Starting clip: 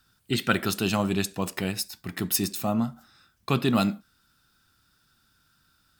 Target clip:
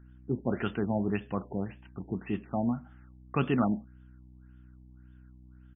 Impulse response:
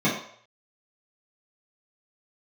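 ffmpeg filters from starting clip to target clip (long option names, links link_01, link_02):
-af "aeval=exprs='val(0)+0.00398*(sin(2*PI*60*n/s)+sin(2*PI*2*60*n/s)/2+sin(2*PI*3*60*n/s)/3+sin(2*PI*4*60*n/s)/4+sin(2*PI*5*60*n/s)/5)':channel_layout=same,asetrate=45938,aresample=44100,afftfilt=real='re*lt(b*sr/1024,930*pow(3600/930,0.5+0.5*sin(2*PI*1.8*pts/sr)))':imag='im*lt(b*sr/1024,930*pow(3600/930,0.5+0.5*sin(2*PI*1.8*pts/sr)))':win_size=1024:overlap=0.75,volume=-3.5dB"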